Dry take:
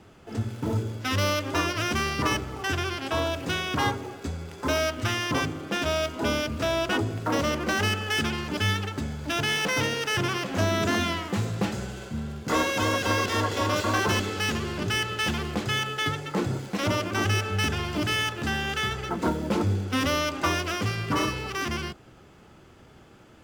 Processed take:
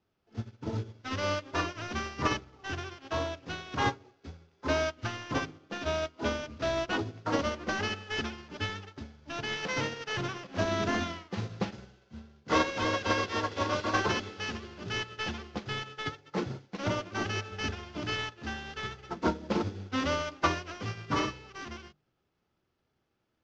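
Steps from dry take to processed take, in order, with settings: CVSD coder 32 kbps; hum notches 50/100/150/200/250/300 Hz; upward expansion 2.5:1, over -40 dBFS; trim +1 dB

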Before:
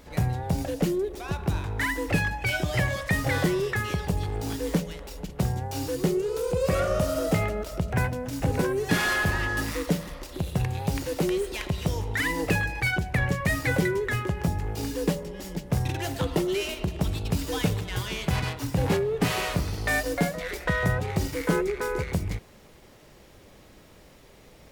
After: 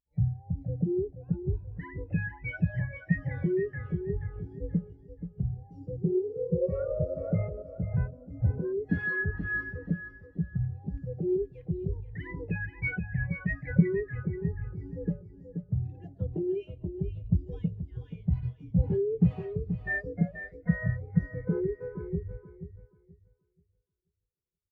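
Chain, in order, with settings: feedback delay 480 ms, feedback 54%, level -4 dB; spectral contrast expander 2.5:1

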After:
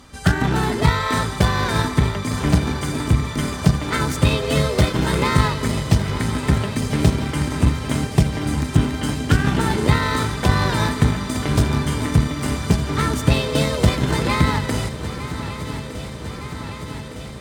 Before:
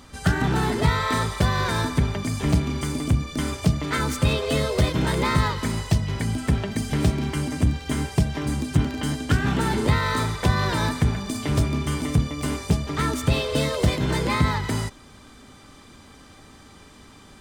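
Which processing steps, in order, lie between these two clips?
shuffle delay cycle 1210 ms, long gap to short 3:1, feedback 72%, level -12 dB; Chebyshev shaper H 7 -27 dB, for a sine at -5 dBFS; trim +4.5 dB

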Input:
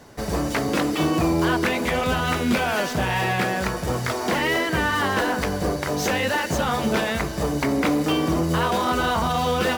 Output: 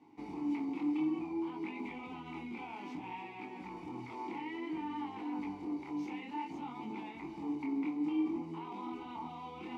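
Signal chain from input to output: peak limiter -19.5 dBFS, peak gain reduction 9.5 dB; chorus 0.58 Hz, delay 19 ms, depth 7.3 ms; vowel filter u; trim +1.5 dB

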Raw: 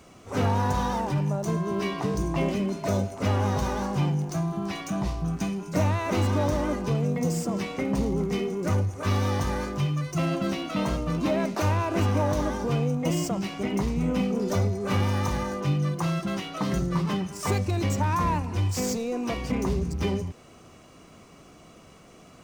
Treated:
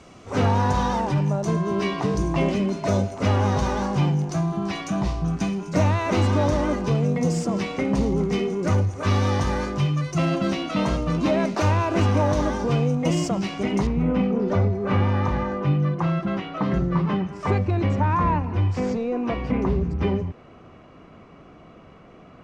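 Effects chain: low-pass 6.8 kHz 12 dB/octave, from 13.87 s 2.2 kHz; trim +4 dB

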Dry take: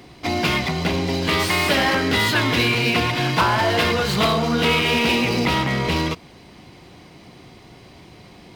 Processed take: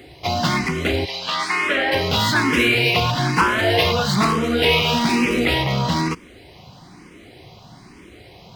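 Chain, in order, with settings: 1.04–1.91 s: band-pass filter 3.8 kHz -> 840 Hz, Q 0.57; barber-pole phaser +1.1 Hz; trim +4 dB

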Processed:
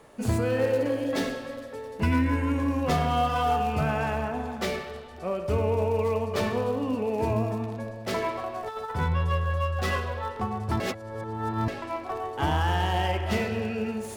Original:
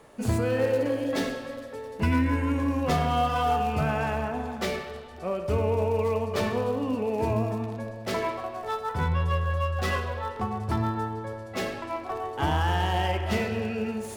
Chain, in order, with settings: 8.35–8.91 s: compressor with a negative ratio -32 dBFS, ratio -0.5; 10.80–11.68 s: reverse

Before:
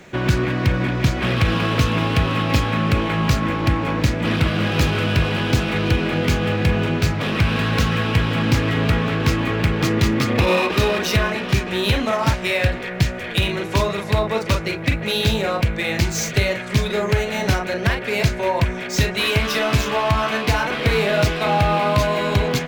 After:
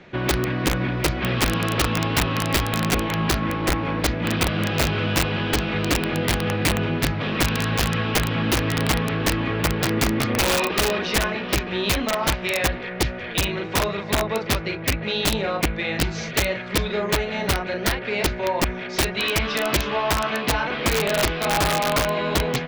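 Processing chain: low-pass 4.6 kHz 24 dB/octave; integer overflow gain 10.5 dB; trim -3 dB

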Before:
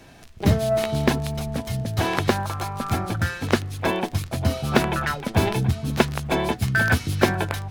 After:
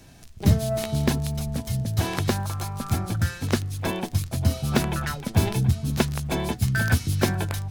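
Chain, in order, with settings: tone controls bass +8 dB, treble +9 dB; trim -6.5 dB

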